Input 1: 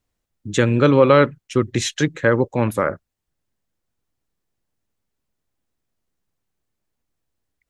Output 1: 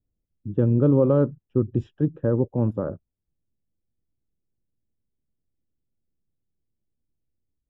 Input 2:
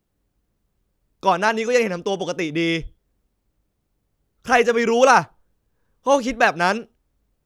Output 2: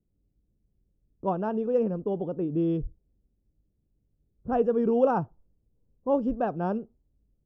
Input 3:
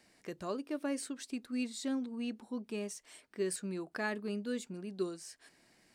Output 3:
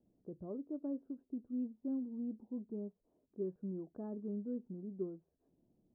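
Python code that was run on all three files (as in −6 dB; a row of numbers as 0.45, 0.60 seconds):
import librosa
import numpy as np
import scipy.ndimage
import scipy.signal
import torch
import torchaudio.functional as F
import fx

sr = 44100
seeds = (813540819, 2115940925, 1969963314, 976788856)

y = scipy.signal.lfilter(np.full(21, 1.0 / 21), 1.0, x)
y = fx.env_lowpass(y, sr, base_hz=600.0, full_db=-15.5)
y = fx.tilt_shelf(y, sr, db=8.5, hz=700.0)
y = y * librosa.db_to_amplitude(-8.5)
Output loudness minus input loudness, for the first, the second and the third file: −5.0, −8.5, −4.0 LU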